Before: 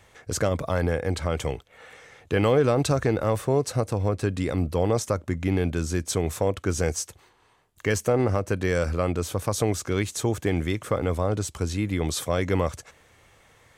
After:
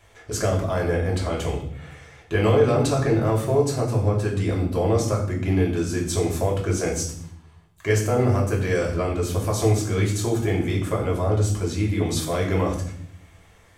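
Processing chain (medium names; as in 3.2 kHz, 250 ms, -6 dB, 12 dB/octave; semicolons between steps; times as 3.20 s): 8.11–8.53 s: treble shelf 8.7 kHz +10 dB; reverberation RT60 0.65 s, pre-delay 3 ms, DRR -3.5 dB; trim -4 dB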